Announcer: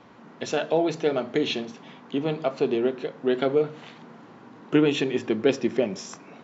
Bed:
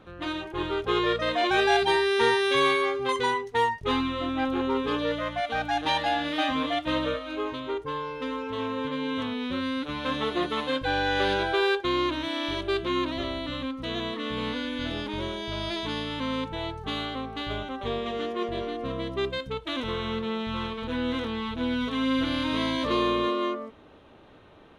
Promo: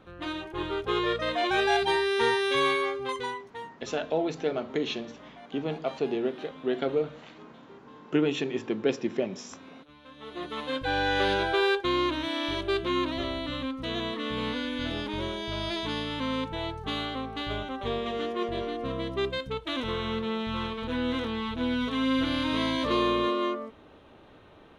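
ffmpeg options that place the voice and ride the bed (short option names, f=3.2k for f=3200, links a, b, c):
-filter_complex "[0:a]adelay=3400,volume=-5dB[a];[1:a]volume=18dB,afade=t=out:st=2.8:d=0.89:silence=0.11885,afade=t=in:st=10.16:d=0.86:silence=0.0944061[b];[a][b]amix=inputs=2:normalize=0"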